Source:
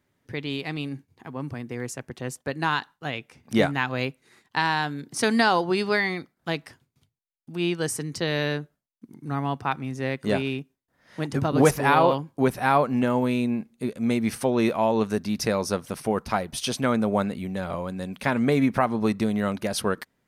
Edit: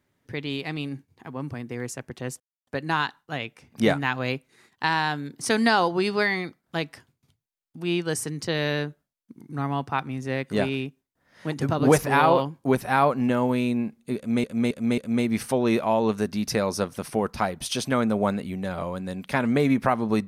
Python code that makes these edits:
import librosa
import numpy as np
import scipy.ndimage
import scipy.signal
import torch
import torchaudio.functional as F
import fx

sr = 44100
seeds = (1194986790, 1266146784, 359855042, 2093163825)

y = fx.edit(x, sr, fx.insert_silence(at_s=2.4, length_s=0.27),
    fx.repeat(start_s=13.9, length_s=0.27, count=4), tone=tone)